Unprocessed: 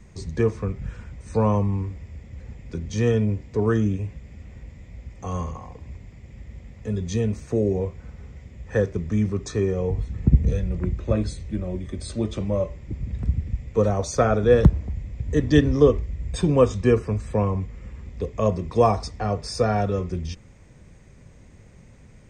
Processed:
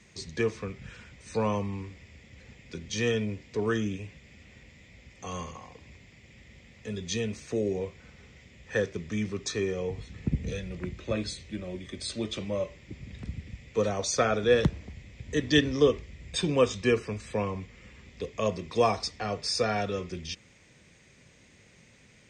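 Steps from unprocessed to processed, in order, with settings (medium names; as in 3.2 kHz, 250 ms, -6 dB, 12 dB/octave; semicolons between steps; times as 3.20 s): frequency weighting D; trim -5.5 dB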